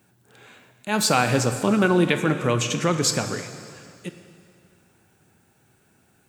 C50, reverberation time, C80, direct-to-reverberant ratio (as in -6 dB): 9.0 dB, 2.4 s, 10.0 dB, 8.0 dB